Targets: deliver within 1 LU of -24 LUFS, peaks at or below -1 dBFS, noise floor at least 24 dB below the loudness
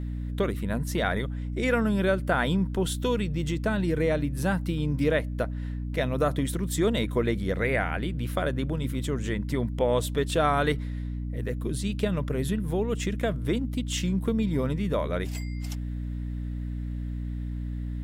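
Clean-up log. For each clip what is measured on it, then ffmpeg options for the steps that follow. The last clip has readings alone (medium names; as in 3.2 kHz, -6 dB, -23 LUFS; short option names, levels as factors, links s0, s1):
hum 60 Hz; highest harmonic 300 Hz; hum level -30 dBFS; loudness -28.0 LUFS; peak level -11.0 dBFS; loudness target -24.0 LUFS
-> -af "bandreject=f=60:t=h:w=4,bandreject=f=120:t=h:w=4,bandreject=f=180:t=h:w=4,bandreject=f=240:t=h:w=4,bandreject=f=300:t=h:w=4"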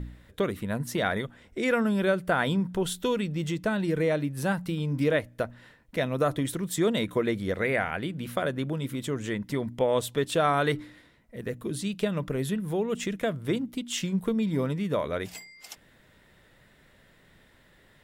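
hum not found; loudness -28.5 LUFS; peak level -11.5 dBFS; loudness target -24.0 LUFS
-> -af "volume=1.68"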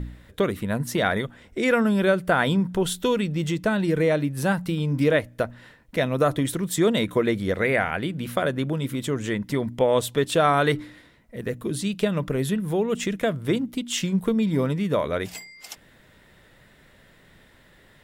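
loudness -24.0 LUFS; peak level -7.0 dBFS; noise floor -55 dBFS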